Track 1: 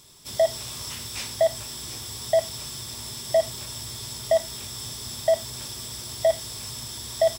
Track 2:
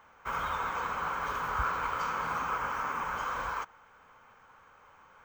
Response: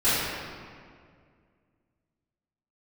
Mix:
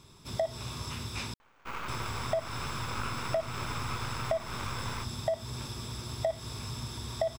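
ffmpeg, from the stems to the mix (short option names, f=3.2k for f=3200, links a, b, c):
-filter_complex "[0:a]lowpass=f=1.5k:p=1,aecho=1:1:0.8:0.35,volume=2dB,asplit=3[a][b][c];[a]atrim=end=1.34,asetpts=PTS-STARTPTS,afade=t=out:st=1.336:d=0.004:c=hsin[d];[b]atrim=start=1.34:end=1.88,asetpts=PTS-STARTPTS,volume=0[e];[c]atrim=start=1.88,asetpts=PTS-STARTPTS,afade=t=in:d=0.004:c=hsin[f];[d][e][f]concat=n=3:v=0:a=1[g];[1:a]aeval=exprs='max(val(0),0)':c=same,adelay=1400,volume=-1dB[h];[g][h]amix=inputs=2:normalize=0,acompressor=threshold=-27dB:ratio=10"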